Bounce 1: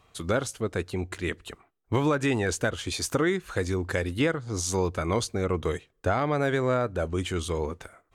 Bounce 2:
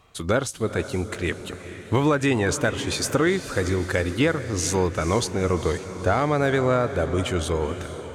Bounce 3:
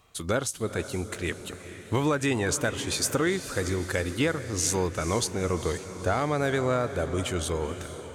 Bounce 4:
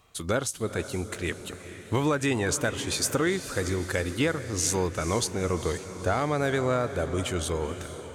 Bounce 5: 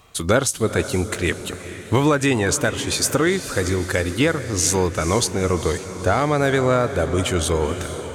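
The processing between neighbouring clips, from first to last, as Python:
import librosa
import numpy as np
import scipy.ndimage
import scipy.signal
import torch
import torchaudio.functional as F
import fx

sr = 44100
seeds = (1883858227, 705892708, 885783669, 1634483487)

y1 = fx.echo_diffused(x, sr, ms=460, feedback_pct=57, wet_db=-12.0)
y1 = F.gain(torch.from_numpy(y1), 4.0).numpy()
y2 = fx.high_shelf(y1, sr, hz=5800.0, db=9.0)
y2 = F.gain(torch.from_numpy(y2), -5.0).numpy()
y3 = y2
y4 = fx.rider(y3, sr, range_db=3, speed_s=2.0)
y4 = F.gain(torch.from_numpy(y4), 7.5).numpy()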